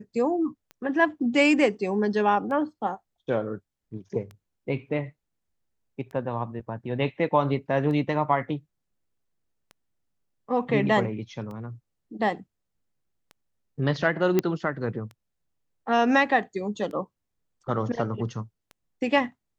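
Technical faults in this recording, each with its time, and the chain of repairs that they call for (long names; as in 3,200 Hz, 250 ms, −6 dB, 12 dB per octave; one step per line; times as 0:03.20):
scratch tick 33 1/3 rpm −28 dBFS
0:14.39: click −9 dBFS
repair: click removal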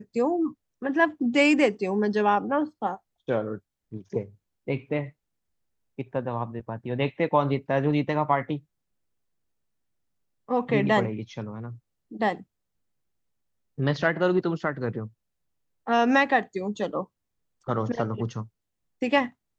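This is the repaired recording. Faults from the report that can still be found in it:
none of them is left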